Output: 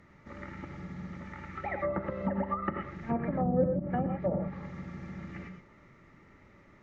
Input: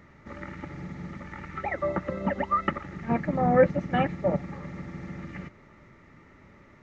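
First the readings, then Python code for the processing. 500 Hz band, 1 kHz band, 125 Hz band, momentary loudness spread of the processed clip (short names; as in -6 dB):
-6.0 dB, -7.0 dB, -3.0 dB, 15 LU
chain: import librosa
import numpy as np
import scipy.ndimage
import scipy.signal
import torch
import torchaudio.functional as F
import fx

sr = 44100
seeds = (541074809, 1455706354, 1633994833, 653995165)

y = fx.rev_gated(x, sr, seeds[0], gate_ms=140, shape='rising', drr_db=5.0)
y = fx.env_lowpass_down(y, sr, base_hz=460.0, full_db=-18.5)
y = y * 10.0 ** (-5.0 / 20.0)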